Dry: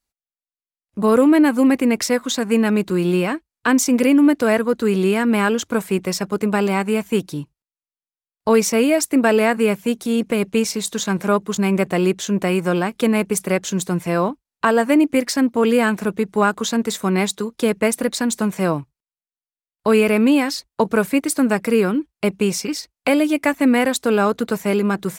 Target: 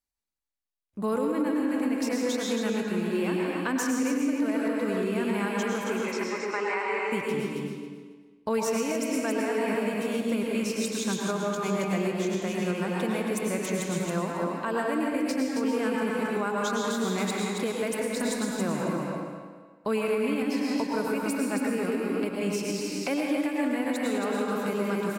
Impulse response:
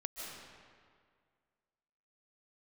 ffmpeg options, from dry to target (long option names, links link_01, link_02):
-filter_complex "[0:a]asettb=1/sr,asplit=3[link_01][link_02][link_03];[link_01]atrim=end=5.844[link_04];[link_02]atrim=start=5.84:end=7.11,asetpts=PTS-STARTPTS,afade=type=in:duration=0.004:curve=qsin,afade=type=out:start_time=1.266:duration=0.004:curve=qsin,highpass=frequency=350:width=0.5412,highpass=frequency=350:width=1.3066,equalizer=frequency=670:width_type=q:width=4:gain=-8,equalizer=frequency=990:width_type=q:width=4:gain=5,equalizer=frequency=2100:width_type=q:width=4:gain=9,equalizer=frequency=3400:width_type=q:width=4:gain=-7,equalizer=frequency=4900:width_type=q:width=4:gain=-6,lowpass=frequency=6300:width=0.5412,lowpass=frequency=6300:width=1.3066[link_05];[link_03]atrim=start=7.106[link_06];[link_04][link_05]acrossfade=duration=0.004:curve1=hsin:curve2=qsin[link_07];[link_07][link_06]acrossfade=duration=0.004:curve1=qsin:curve2=hsin,aecho=1:1:273|546|819:0.531|0.101|0.0192[link_08];[1:a]atrim=start_sample=2205,asetrate=61740,aresample=44100[link_09];[link_08][link_09]afir=irnorm=-1:irlink=0,alimiter=limit=-15.5dB:level=0:latency=1:release=320,volume=-3dB"